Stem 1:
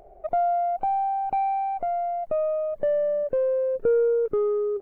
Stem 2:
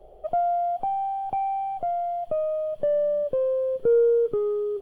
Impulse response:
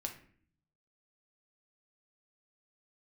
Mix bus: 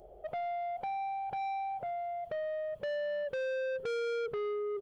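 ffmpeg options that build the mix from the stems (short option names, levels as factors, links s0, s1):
-filter_complex "[0:a]bass=f=250:g=7,treble=f=4000:g=12,volume=0.141,asplit=2[s0][s1];[s1]volume=1[s2];[1:a]highshelf=f=2200:g=-9,adelay=1.3,volume=0.668[s3];[2:a]atrim=start_sample=2205[s4];[s2][s4]afir=irnorm=-1:irlink=0[s5];[s0][s3][s5]amix=inputs=3:normalize=0,highpass=46,asoftclip=type=tanh:threshold=0.0224"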